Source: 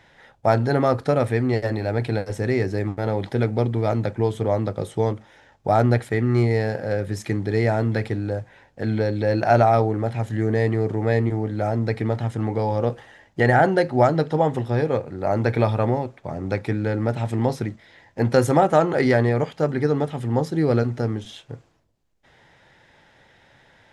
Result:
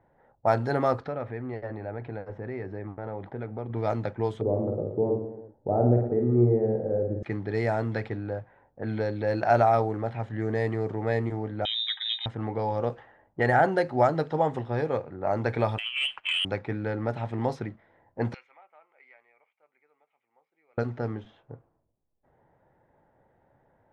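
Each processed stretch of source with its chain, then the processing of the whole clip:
0.98–3.7 LPF 5600 Hz + compressor 2:1, threshold -28 dBFS
4.41–7.23 synth low-pass 430 Hz, resonance Q 1.6 + reverse bouncing-ball echo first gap 50 ms, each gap 1.2×, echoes 5
11.65–12.26 inverted band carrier 3800 Hz + brick-wall FIR high-pass 740 Hz + notch comb 1400 Hz
15.78–16.45 inverted band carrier 3200 Hz + negative-ratio compressor -26 dBFS, ratio -0.5 + sample leveller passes 2
18.34–20.78 ladder band-pass 2400 Hz, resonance 80% + bell 1700 Hz -10 dB 0.48 oct
whole clip: low-pass opened by the level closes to 680 Hz, open at -15 dBFS; bell 1000 Hz +5.5 dB 2.2 oct; gain -8.5 dB

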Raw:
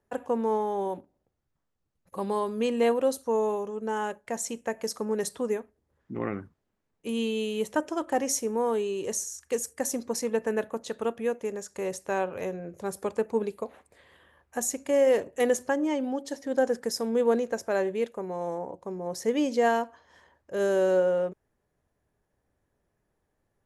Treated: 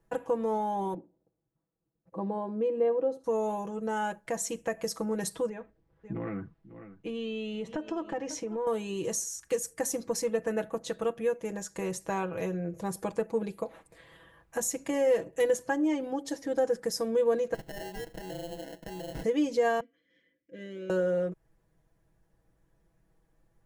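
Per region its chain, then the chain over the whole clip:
0.94–3.24 band-pass 370 Hz, Q 0.88 + echo 76 ms -21.5 dB
5.49–8.67 LPF 3700 Hz + echo 0.544 s -20.5 dB + compressor 2.5:1, threshold -34 dBFS
17.54–19.24 RIAA curve recording + compressor 3:1, threshold -42 dBFS + sample-rate reducer 1200 Hz
19.8–20.9 vowel filter i + small resonant body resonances 530/2000 Hz, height 17 dB, ringing for 85 ms
whole clip: low shelf 150 Hz +10 dB; comb 6.1 ms, depth 82%; compressor 1.5:1, threshold -34 dBFS

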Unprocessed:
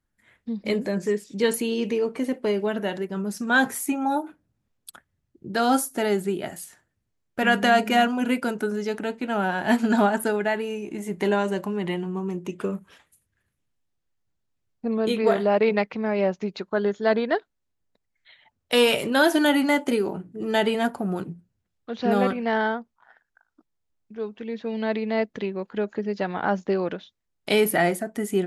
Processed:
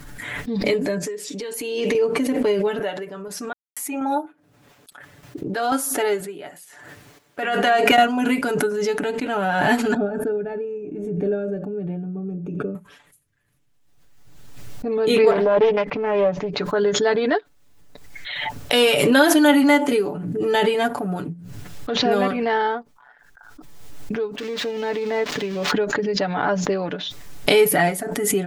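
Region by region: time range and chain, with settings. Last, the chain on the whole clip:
1.03–1.95 HPF 280 Hz + compressor, threshold -31 dBFS
2.79–7.98 HPF 61 Hz + tone controls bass -12 dB, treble -5 dB + random-step tremolo 4.1 Hz, depth 100%
9.94–12.75 running mean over 44 samples + echo 85 ms -22.5 dB
15.31–16.6 LPF 1500 Hz 6 dB/oct + Doppler distortion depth 0.25 ms
24.38–25.71 switching spikes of -21.5 dBFS + air absorption 210 m
whole clip: comb 6.9 ms, depth 69%; backwards sustainer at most 32 dB/s; gain +1 dB

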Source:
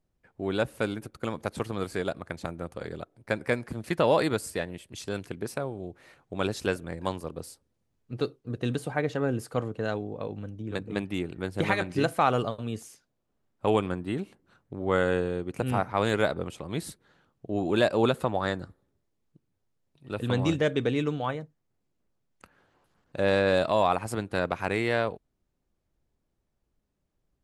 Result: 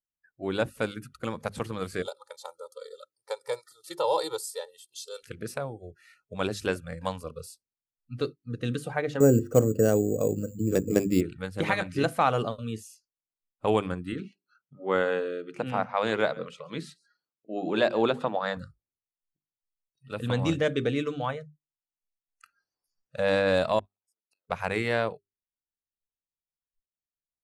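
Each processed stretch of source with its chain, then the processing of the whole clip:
2.02–5.23 HPF 930 Hz 6 dB/oct + band shelf 2000 Hz -14.5 dB 1.2 oct + comb 2.2 ms, depth 81%
9.2–11.21 HPF 40 Hz + resonant low shelf 670 Hz +8.5 dB, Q 1.5 + careless resampling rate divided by 6×, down filtered, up hold
14.12–18.57 BPF 160–5100 Hz + notches 60/120/180/240/300/360/420 Hz + echo 0.138 s -21.5 dB
23.79–24.5 compressor 3:1, threshold -33 dBFS + HPF 370 Hz + flipped gate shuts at -34 dBFS, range -34 dB
whole clip: notches 50/100/150/200/250/300/350/400 Hz; spectral noise reduction 29 dB

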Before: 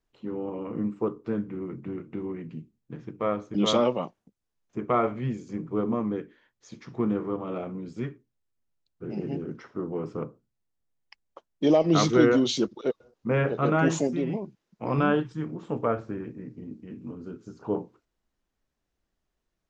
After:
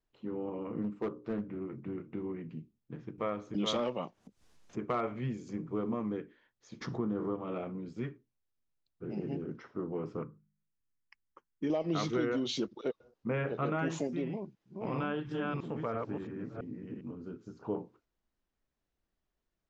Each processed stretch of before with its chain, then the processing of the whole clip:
0.82–1.76 overloaded stage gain 22 dB + notches 60/120/180/240/300/360/420/480/540/600 Hz + Doppler distortion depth 0.28 ms
3.18–6.17 high shelf 5600 Hz +7 dB + upward compressor, threshold -37 dBFS + hard clip -15 dBFS
6.81–7.35 bell 2400 Hz -12 dB 0.62 oct + fast leveller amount 50%
10.22–11.7 fixed phaser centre 1600 Hz, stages 4 + de-hum 50.86 Hz, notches 4
14.27–17.01 reverse delay 0.334 s, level -2 dB + dynamic EQ 3700 Hz, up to +3 dB, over -48 dBFS, Q 0.88 + compressor 1.5:1, threshold -32 dBFS
whole clip: Bessel low-pass 5800 Hz; compressor 3:1, threshold -26 dBFS; dynamic EQ 2400 Hz, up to +3 dB, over -46 dBFS, Q 1.1; gain -4.5 dB

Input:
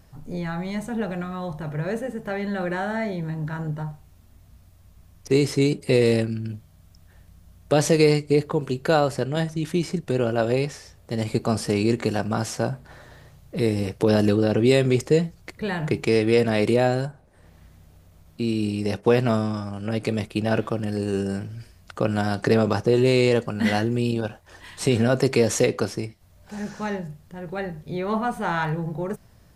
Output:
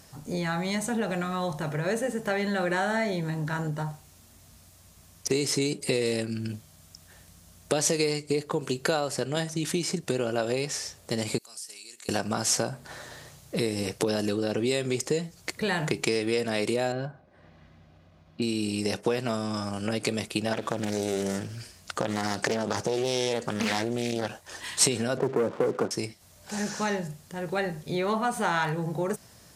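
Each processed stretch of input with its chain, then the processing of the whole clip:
11.38–12.09 differentiator + compressor 2.5:1, threshold -57 dBFS
16.92–18.42 air absorption 310 m + notch comb 450 Hz
20.53–24.29 compressor 3:1, threshold -21 dBFS + Doppler distortion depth 0.51 ms
25.17–25.91 median filter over 25 samples + Chebyshev band-pass 130–1500 Hz, order 3 + sample leveller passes 2
whole clip: compressor, threshold -26 dBFS; HPF 210 Hz 6 dB/oct; bell 7500 Hz +9.5 dB 1.9 oct; gain +3.5 dB

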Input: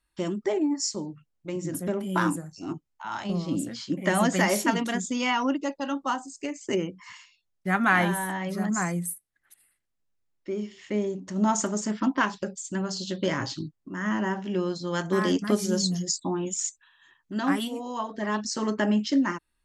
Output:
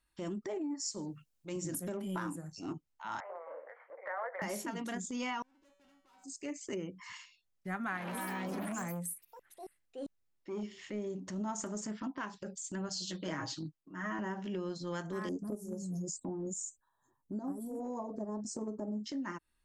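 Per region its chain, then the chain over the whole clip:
0.86–1.97 high shelf 3200 Hz +10.5 dB + notch 2000 Hz, Q 15
3.2–4.42 half-wave gain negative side -7 dB + Chebyshev band-pass 460–2100 Hz, order 5
5.42–6.24 compressor 2:1, threshold -33 dBFS + tube stage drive 46 dB, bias 0.55 + resonator 190 Hz, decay 0.97 s, mix 90%
7.97–10.63 echoes that change speed 0.102 s, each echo +5 st, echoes 3, each echo -6 dB + core saturation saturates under 1100 Hz
12.89–14.19 low shelf 150 Hz -10.5 dB + comb 6.4 ms, depth 86% + three-band expander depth 70%
15.29–19.06 Chebyshev band-stop 600–9600 Hz + transient shaper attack +9 dB, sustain +4 dB
whole clip: dynamic EQ 3600 Hz, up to -4 dB, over -44 dBFS, Q 1.1; compressor 10:1, threshold -32 dBFS; transient shaper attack -7 dB, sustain -1 dB; gain -1.5 dB

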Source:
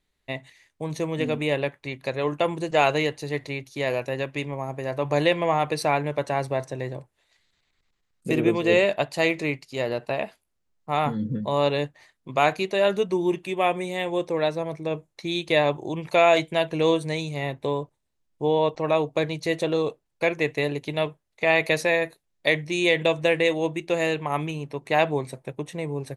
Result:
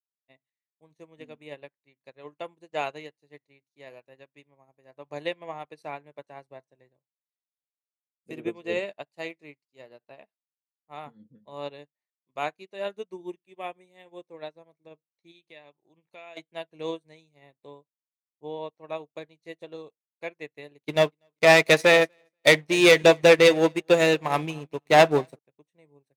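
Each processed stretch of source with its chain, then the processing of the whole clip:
15.31–16.37 dynamic EQ 2600 Hz, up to +6 dB, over -36 dBFS, Q 0.98 + compressor 2:1, threshold -29 dBFS
20.88–25.39 sample leveller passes 3 + feedback echo 0.241 s, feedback 36%, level -18 dB
whole clip: HPF 150 Hz; upward expander 2.5:1, over -39 dBFS

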